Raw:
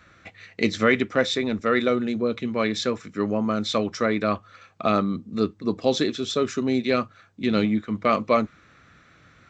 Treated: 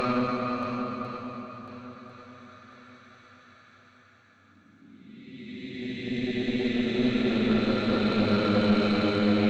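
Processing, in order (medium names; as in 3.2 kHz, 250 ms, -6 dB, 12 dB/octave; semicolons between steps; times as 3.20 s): Paulstretch 15×, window 0.25 s, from 7.00 s; valve stage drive 15 dB, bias 0.6; shuffle delay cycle 1048 ms, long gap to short 1.5:1, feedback 32%, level -10.5 dB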